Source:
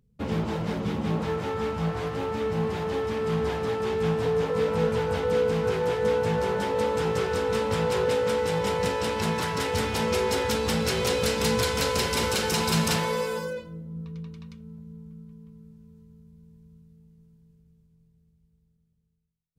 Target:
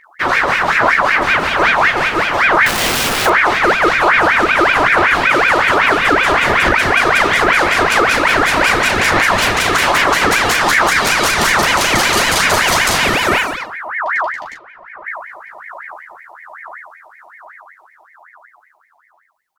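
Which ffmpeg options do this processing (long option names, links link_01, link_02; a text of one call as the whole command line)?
ffmpeg -i in.wav -filter_complex "[0:a]aphaser=in_gain=1:out_gain=1:delay=2.7:decay=0.45:speed=1.2:type=sinusoidal,asettb=1/sr,asplit=3[link_01][link_02][link_03];[link_01]atrim=end=2.664[link_04];[link_02]atrim=start=2.66:end=3.26,asetpts=PTS-STARTPTS,afade=type=in:duration=0.004:curve=qsin,afade=type=out:start_time=0.596:duration=0.004:curve=qsin,aeval=exprs='(mod(18.8*val(0)+1,2)-1)/18.8':channel_layout=same[link_05];[link_03]atrim=start=3.256[link_06];[link_04][link_05]acrossfade=duration=0.004:curve1=hsin:curve2=qsin[link_07];[link_07][link_06]acrossfade=duration=0.004:curve1=qsin:curve2=hsin,asplit=3[link_08][link_09][link_10];[link_08]afade=type=out:start_time=14.54:duration=0.02[link_11];[link_09]highpass=320,lowpass=2800,afade=type=in:start_time=14.54:duration=0.02,afade=type=out:start_time=15.05:duration=0.02[link_12];[link_10]afade=type=in:start_time=15.05:duration=0.02[link_13];[link_11][link_12][link_13]amix=inputs=3:normalize=0,aecho=1:1:13|39:0.631|0.473,alimiter=level_in=15dB:limit=-1dB:release=50:level=0:latency=1,aeval=exprs='val(0)*sin(2*PI*1400*n/s+1400*0.45/5.3*sin(2*PI*5.3*n/s))':channel_layout=same" out.wav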